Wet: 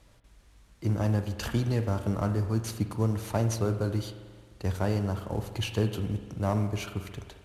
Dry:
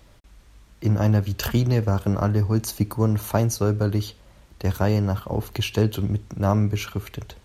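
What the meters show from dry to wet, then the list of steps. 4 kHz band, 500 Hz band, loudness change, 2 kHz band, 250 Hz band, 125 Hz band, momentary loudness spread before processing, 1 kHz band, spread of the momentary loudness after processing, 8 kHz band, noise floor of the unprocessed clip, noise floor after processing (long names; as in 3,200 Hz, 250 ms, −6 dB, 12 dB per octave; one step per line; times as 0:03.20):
−6.5 dB, −6.0 dB, −6.5 dB, −6.0 dB, −6.5 dB, −7.0 dB, 7 LU, −6.0 dB, 7 LU, −7.5 dB, −53 dBFS, −59 dBFS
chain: variable-slope delta modulation 64 kbit/s
spring reverb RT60 1.6 s, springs 44 ms, chirp 50 ms, DRR 8.5 dB
level −6.5 dB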